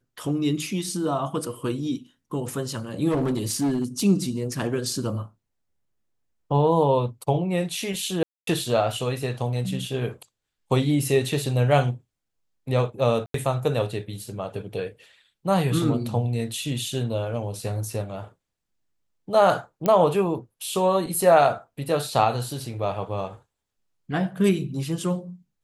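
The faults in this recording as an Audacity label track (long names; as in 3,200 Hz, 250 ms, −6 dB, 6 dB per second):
3.090000	4.040000	clipping −19.5 dBFS
8.230000	8.470000	drop-out 243 ms
13.260000	13.340000	drop-out 83 ms
19.860000	19.860000	click −10 dBFS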